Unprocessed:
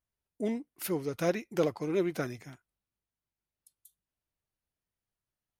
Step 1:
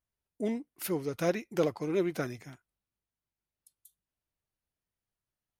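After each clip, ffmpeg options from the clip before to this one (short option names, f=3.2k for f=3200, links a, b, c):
-af anull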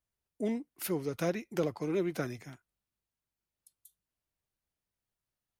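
-filter_complex "[0:a]acrossover=split=260[a][b];[b]acompressor=threshold=-32dB:ratio=2[c];[a][c]amix=inputs=2:normalize=0"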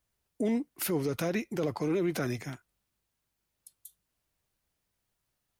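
-af "alimiter=level_in=6.5dB:limit=-24dB:level=0:latency=1:release=43,volume=-6.5dB,volume=8.5dB"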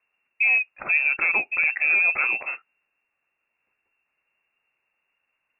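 -af "lowpass=f=2.4k:t=q:w=0.5098,lowpass=f=2.4k:t=q:w=0.6013,lowpass=f=2.4k:t=q:w=0.9,lowpass=f=2.4k:t=q:w=2.563,afreqshift=-2800,volume=8.5dB"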